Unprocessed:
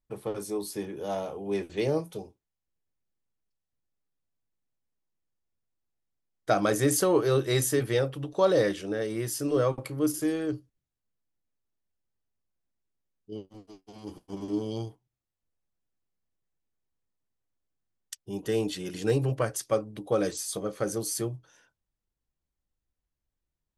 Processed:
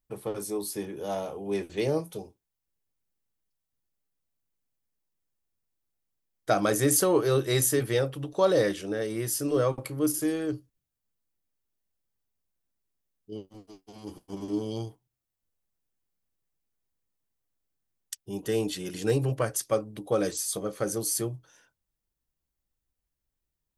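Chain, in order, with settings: high shelf 9800 Hz +9 dB

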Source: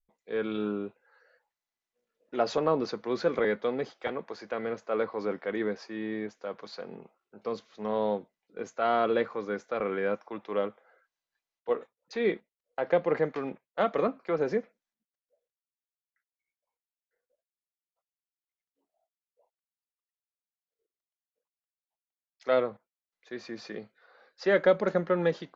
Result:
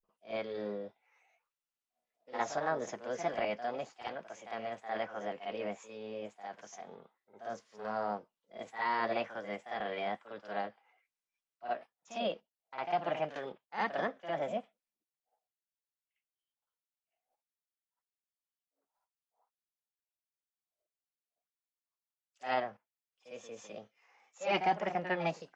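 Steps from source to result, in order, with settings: formant shift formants +6 st; reverse echo 54 ms -9.5 dB; gain -7.5 dB

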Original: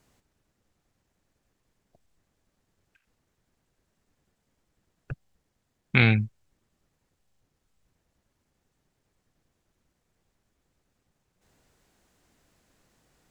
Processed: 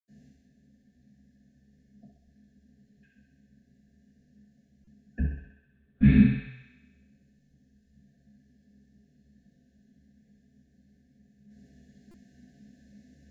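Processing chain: FFT band-reject 750–1500 Hz; compressor 2.5:1, threshold -33 dBFS, peak gain reduction 12.5 dB; small resonant body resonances 200/960/1700 Hz, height 8 dB, ringing for 20 ms; frequency shift +19 Hz; 5.11–6.14 LPC vocoder at 8 kHz whisper; thinning echo 64 ms, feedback 71%, high-pass 410 Hz, level -4 dB; reverb RT60 0.45 s, pre-delay 76 ms; stuck buffer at 4.84/12.11, samples 128, times 10

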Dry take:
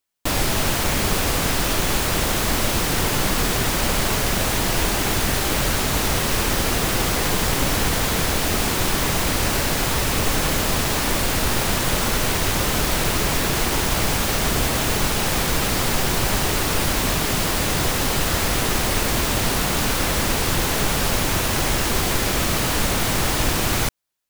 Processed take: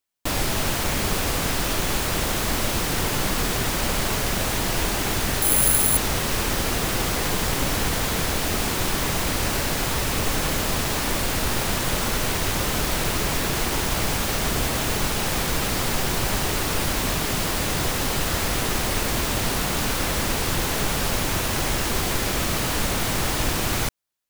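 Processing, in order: 5.42–5.97 careless resampling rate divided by 4×, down filtered, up zero stuff; gain -3 dB

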